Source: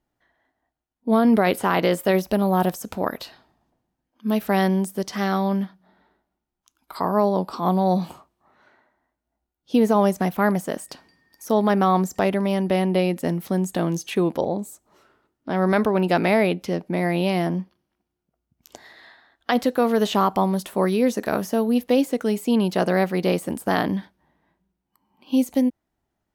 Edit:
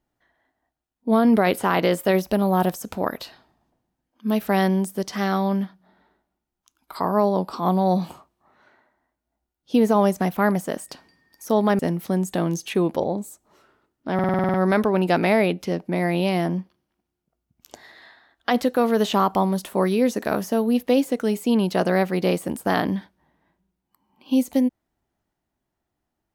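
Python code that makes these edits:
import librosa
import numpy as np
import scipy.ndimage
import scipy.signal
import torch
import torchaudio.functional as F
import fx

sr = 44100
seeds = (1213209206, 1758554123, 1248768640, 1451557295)

y = fx.edit(x, sr, fx.cut(start_s=11.79, length_s=1.41),
    fx.stutter(start_s=15.55, slice_s=0.05, count=9), tone=tone)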